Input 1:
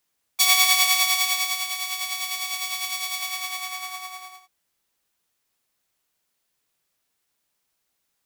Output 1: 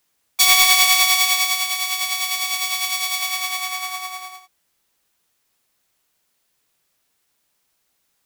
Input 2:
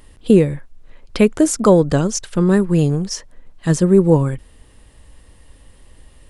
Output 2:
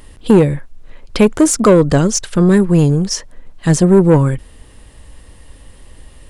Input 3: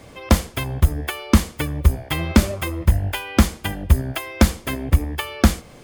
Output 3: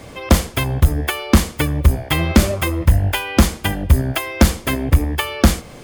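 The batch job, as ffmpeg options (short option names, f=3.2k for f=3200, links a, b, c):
-af "acontrast=86,volume=-1dB"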